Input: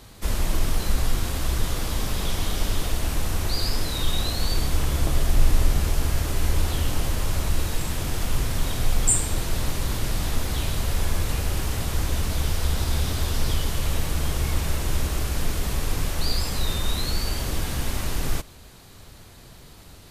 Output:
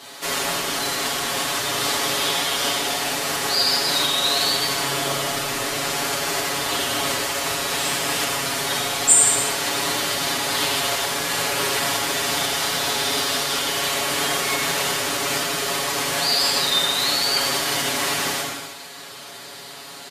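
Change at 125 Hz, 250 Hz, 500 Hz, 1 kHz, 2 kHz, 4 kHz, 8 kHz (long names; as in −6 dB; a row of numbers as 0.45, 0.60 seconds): −12.0, +1.0, +8.0, +10.5, +11.5, +11.5, +9.5 decibels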